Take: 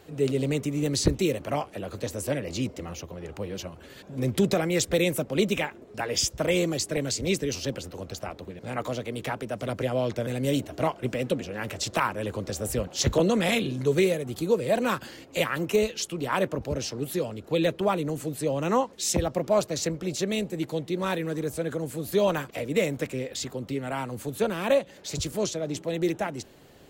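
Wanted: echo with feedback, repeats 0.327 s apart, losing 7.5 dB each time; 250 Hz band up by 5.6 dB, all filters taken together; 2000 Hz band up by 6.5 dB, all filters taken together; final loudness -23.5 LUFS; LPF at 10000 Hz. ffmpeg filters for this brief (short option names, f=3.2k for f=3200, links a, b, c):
-af "lowpass=10k,equalizer=f=250:t=o:g=7.5,equalizer=f=2k:t=o:g=8,aecho=1:1:327|654|981|1308|1635:0.422|0.177|0.0744|0.0312|0.0131,volume=0.5dB"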